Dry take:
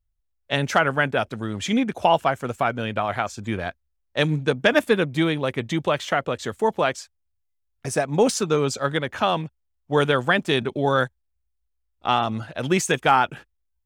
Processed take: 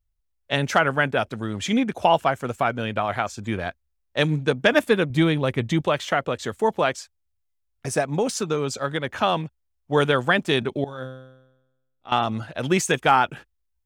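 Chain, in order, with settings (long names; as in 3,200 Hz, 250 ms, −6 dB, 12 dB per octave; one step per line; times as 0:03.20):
0:05.10–0:05.81: low-shelf EQ 140 Hz +10 dB
0:08.12–0:09.04: downward compressor 2 to 1, threshold −23 dBFS, peak gain reduction 6 dB
0:10.84–0:12.12: tuned comb filter 130 Hz, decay 0.99 s, harmonics all, mix 90%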